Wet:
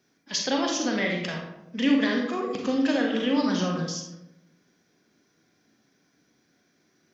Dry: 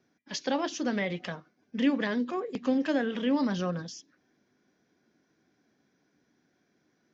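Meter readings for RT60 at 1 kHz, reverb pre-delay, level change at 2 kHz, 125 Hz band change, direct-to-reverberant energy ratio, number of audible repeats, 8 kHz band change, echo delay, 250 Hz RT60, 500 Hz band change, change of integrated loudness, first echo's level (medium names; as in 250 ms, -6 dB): 0.80 s, 34 ms, +5.5 dB, +4.0 dB, 0.5 dB, no echo, no reading, no echo, 1.1 s, +3.5 dB, +4.0 dB, no echo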